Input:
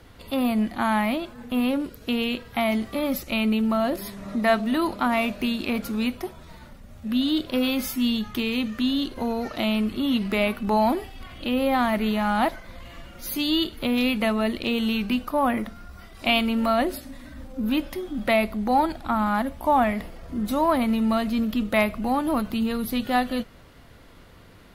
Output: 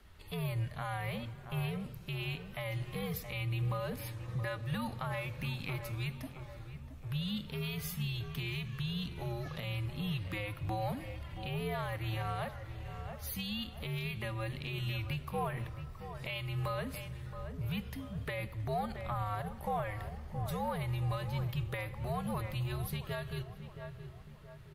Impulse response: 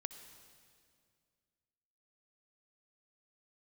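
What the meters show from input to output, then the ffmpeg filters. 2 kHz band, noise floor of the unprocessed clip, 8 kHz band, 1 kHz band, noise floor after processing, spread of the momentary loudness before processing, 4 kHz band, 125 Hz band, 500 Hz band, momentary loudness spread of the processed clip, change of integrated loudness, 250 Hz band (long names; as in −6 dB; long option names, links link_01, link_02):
−13.0 dB, −48 dBFS, −10.5 dB, −15.5 dB, −50 dBFS, 9 LU, −13.5 dB, +3.5 dB, −15.0 dB, 8 LU, −14.0 dB, −19.5 dB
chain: -filter_complex "[0:a]equalizer=frequency=500:width=0.36:gain=-8.5,asplit=2[link_01][link_02];[link_02]adelay=672,lowpass=frequency=1400:poles=1,volume=-11dB,asplit=2[link_03][link_04];[link_04]adelay=672,lowpass=frequency=1400:poles=1,volume=0.49,asplit=2[link_05][link_06];[link_06]adelay=672,lowpass=frequency=1400:poles=1,volume=0.49,asplit=2[link_07][link_08];[link_08]adelay=672,lowpass=frequency=1400:poles=1,volume=0.49,asplit=2[link_09][link_10];[link_10]adelay=672,lowpass=frequency=1400:poles=1,volume=0.49[link_11];[link_01][link_03][link_05][link_07][link_09][link_11]amix=inputs=6:normalize=0,afreqshift=-100,alimiter=limit=-20.5dB:level=0:latency=1:release=209,asplit=2[link_12][link_13];[1:a]atrim=start_sample=2205,lowpass=3200[link_14];[link_13][link_14]afir=irnorm=-1:irlink=0,volume=-2dB[link_15];[link_12][link_15]amix=inputs=2:normalize=0,volume=-9dB"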